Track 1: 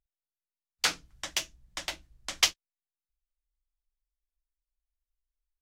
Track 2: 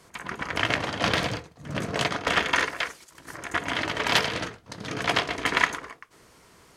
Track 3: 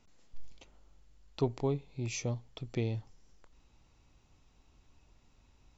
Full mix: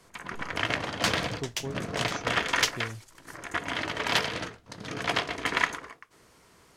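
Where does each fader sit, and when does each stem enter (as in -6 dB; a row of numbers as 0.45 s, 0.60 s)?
-3.0 dB, -3.5 dB, -5.5 dB; 0.20 s, 0.00 s, 0.00 s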